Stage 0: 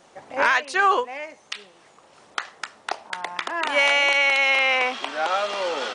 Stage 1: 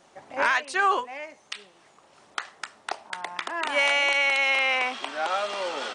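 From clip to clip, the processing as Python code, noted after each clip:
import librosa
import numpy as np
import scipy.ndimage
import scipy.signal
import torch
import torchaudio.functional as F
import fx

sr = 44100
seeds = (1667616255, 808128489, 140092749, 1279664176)

y = fx.notch(x, sr, hz=490.0, q=12.0)
y = fx.dynamic_eq(y, sr, hz=8400.0, q=5.5, threshold_db=-58.0, ratio=4.0, max_db=7)
y = y * 10.0 ** (-3.5 / 20.0)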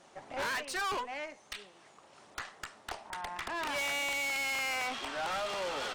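y = fx.tube_stage(x, sr, drive_db=32.0, bias=0.45)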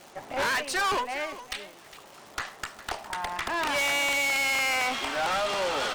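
y = fx.dmg_crackle(x, sr, seeds[0], per_s=340.0, level_db=-47.0)
y = y + 10.0 ** (-15.0 / 20.0) * np.pad(y, (int(408 * sr / 1000.0), 0))[:len(y)]
y = y * 10.0 ** (7.5 / 20.0)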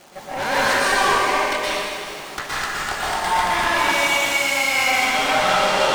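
y = fx.rider(x, sr, range_db=3, speed_s=0.5)
y = fx.rev_plate(y, sr, seeds[1], rt60_s=2.5, hf_ratio=0.9, predelay_ms=105, drr_db=-9.5)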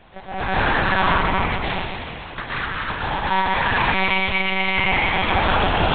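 y = fx.lpc_monotone(x, sr, seeds[2], pitch_hz=190.0, order=8)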